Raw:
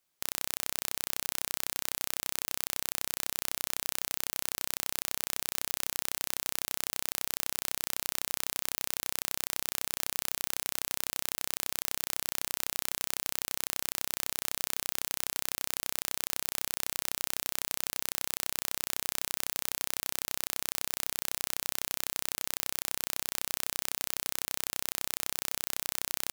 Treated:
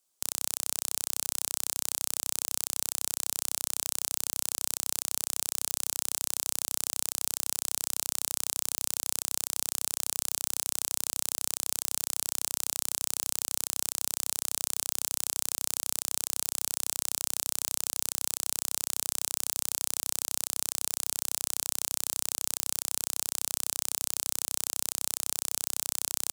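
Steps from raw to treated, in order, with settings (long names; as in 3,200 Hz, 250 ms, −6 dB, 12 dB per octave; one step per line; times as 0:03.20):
octave-band graphic EQ 125/2,000/8,000 Hz −10/−8/+8 dB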